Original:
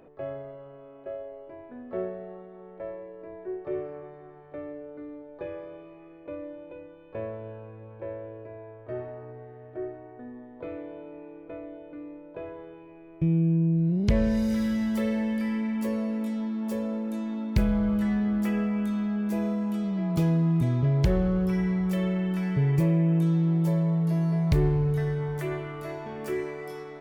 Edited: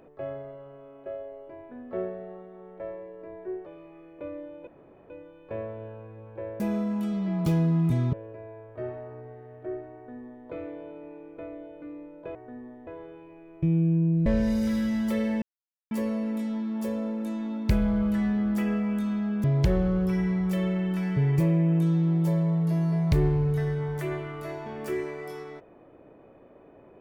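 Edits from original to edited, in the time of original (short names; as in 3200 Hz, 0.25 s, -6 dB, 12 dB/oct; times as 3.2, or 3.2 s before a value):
3.66–5.73 cut
6.74 insert room tone 0.43 s
10.06–10.58 copy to 12.46
13.85–14.13 cut
15.29–15.78 mute
19.31–20.84 move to 8.24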